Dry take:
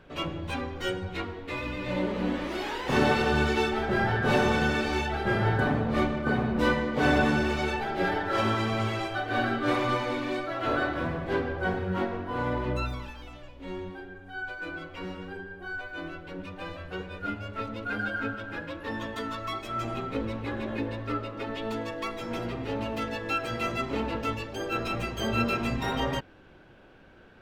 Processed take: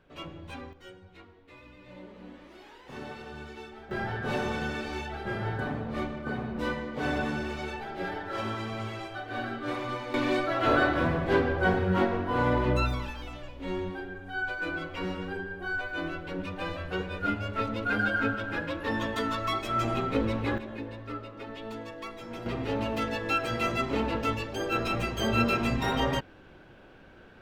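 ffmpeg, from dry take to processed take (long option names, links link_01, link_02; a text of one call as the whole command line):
ffmpeg -i in.wav -af "asetnsamples=nb_out_samples=441:pad=0,asendcmd='0.73 volume volume -18dB;3.91 volume volume -7dB;10.14 volume volume 4dB;20.58 volume volume -6.5dB;22.46 volume volume 1.5dB',volume=-9dB" out.wav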